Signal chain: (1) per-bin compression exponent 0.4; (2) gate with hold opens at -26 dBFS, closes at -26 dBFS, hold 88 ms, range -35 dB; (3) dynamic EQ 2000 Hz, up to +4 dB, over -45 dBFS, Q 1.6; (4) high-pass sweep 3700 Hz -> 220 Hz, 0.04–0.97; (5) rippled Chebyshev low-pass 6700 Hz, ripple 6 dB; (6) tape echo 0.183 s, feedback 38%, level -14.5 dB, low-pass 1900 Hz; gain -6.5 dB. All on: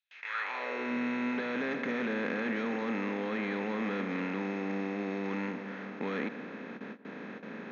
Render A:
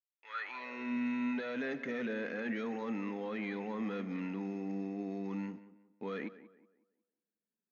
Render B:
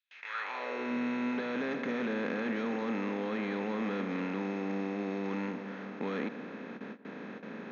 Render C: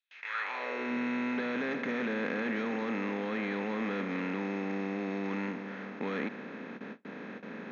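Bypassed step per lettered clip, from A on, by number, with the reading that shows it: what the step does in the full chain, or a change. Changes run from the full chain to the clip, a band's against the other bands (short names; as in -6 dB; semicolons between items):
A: 1, 250 Hz band +3.5 dB; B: 3, 2 kHz band -3.0 dB; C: 6, echo-to-direct -24.5 dB to none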